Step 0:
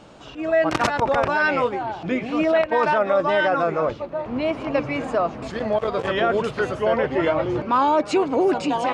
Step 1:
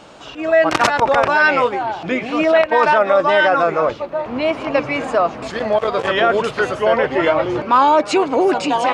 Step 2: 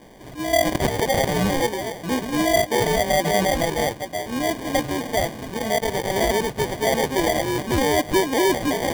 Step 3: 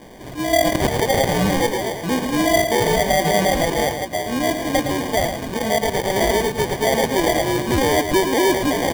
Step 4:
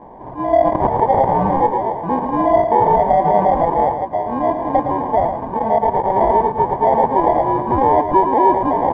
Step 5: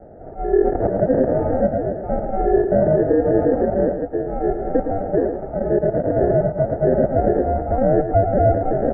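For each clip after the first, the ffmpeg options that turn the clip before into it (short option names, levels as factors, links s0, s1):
-af "lowshelf=f=340:g=-9,volume=2.37"
-af "equalizer=f=1200:w=0.5:g=-9,acrusher=samples=33:mix=1:aa=0.000001"
-filter_complex "[0:a]asplit=2[s0][s1];[s1]acompressor=threshold=0.0447:ratio=6,volume=0.75[s2];[s0][s2]amix=inputs=2:normalize=0,aecho=1:1:112:0.398"
-af "lowpass=f=930:t=q:w=5,volume=0.841"
-af "highpass=f=210:t=q:w=0.5412,highpass=f=210:t=q:w=1.307,lowpass=f=2300:t=q:w=0.5176,lowpass=f=2300:t=q:w=0.7071,lowpass=f=2300:t=q:w=1.932,afreqshift=-280,volume=0.75"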